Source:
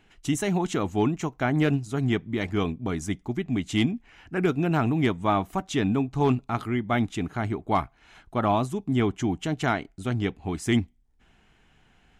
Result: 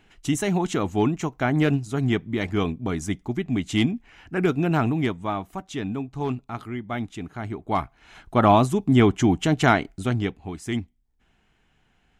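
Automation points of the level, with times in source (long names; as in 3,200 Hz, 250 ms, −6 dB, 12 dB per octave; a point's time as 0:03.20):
0:04.82 +2 dB
0:05.37 −5 dB
0:07.33 −5 dB
0:08.40 +7 dB
0:09.92 +7 dB
0:10.55 −4.5 dB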